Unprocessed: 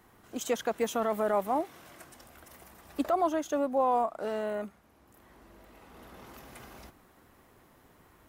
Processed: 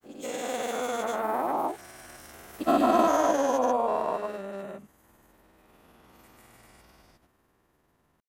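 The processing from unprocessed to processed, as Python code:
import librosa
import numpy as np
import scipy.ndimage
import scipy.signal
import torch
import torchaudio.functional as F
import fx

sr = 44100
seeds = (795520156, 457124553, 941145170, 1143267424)

y = fx.spec_dilate(x, sr, span_ms=480)
y = fx.doppler_pass(y, sr, speed_mps=20, closest_m=19.0, pass_at_s=2.85)
y = fx.granulator(y, sr, seeds[0], grain_ms=100.0, per_s=20.0, spray_ms=100.0, spread_st=0)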